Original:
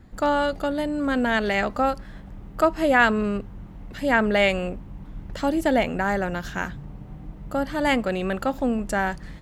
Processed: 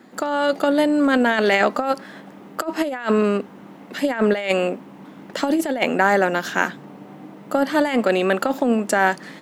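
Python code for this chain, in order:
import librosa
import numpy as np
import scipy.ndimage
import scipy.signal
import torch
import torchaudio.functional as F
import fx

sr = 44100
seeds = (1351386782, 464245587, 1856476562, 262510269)

y = scipy.signal.sosfilt(scipy.signal.butter(4, 230.0, 'highpass', fs=sr, output='sos'), x)
y = fx.over_compress(y, sr, threshold_db=-24.0, ratio=-0.5)
y = F.gain(torch.from_numpy(y), 6.5).numpy()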